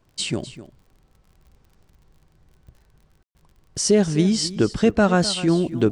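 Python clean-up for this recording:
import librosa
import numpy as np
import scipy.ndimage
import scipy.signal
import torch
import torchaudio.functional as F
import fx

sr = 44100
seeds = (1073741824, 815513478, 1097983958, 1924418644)

y = fx.fix_declick_ar(x, sr, threshold=6.5)
y = fx.fix_ambience(y, sr, seeds[0], print_start_s=0.82, print_end_s=1.32, start_s=3.23, end_s=3.35)
y = fx.fix_echo_inverse(y, sr, delay_ms=254, level_db=-15.0)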